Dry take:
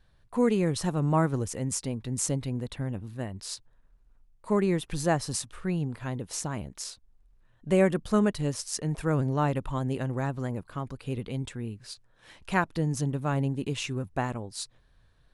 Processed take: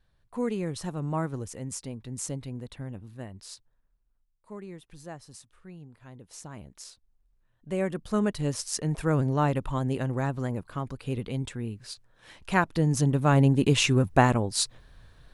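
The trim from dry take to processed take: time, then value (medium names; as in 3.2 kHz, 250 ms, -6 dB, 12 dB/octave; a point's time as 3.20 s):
3.35 s -5.5 dB
4.50 s -16.5 dB
5.91 s -16.5 dB
6.67 s -7.5 dB
7.72 s -7.5 dB
8.55 s +1.5 dB
12.50 s +1.5 dB
13.75 s +10 dB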